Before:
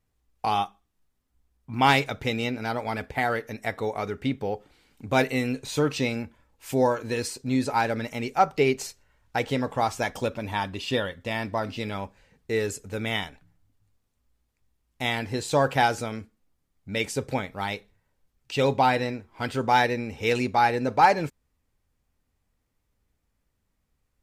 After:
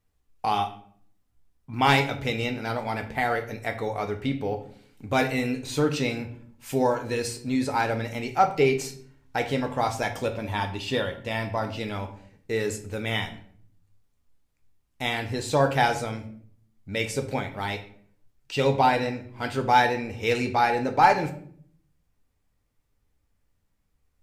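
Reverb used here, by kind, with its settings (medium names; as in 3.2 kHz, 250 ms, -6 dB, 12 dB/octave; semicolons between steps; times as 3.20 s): simulated room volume 74 m³, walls mixed, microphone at 0.4 m; trim -1 dB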